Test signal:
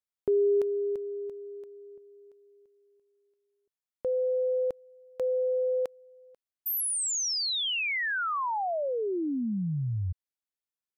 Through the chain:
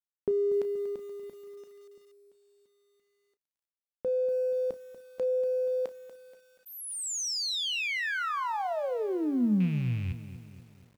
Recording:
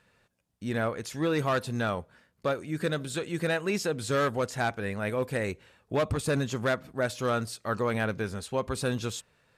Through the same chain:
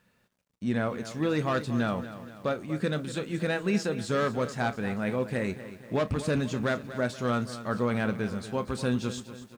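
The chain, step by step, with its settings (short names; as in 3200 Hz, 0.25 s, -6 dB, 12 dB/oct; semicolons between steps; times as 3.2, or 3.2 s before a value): rattling part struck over -29 dBFS, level -34 dBFS; LPF 8000 Hz 12 dB/oct; bell 210 Hz +8 dB 0.71 oct; in parallel at -10.5 dB: crossover distortion -43.5 dBFS; on the sum: requantised 12-bit, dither none; on a send: early reflections 16 ms -16.5 dB, 33 ms -14.5 dB; on the sum: lo-fi delay 0.239 s, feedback 55%, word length 8-bit, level -13 dB; gain -4 dB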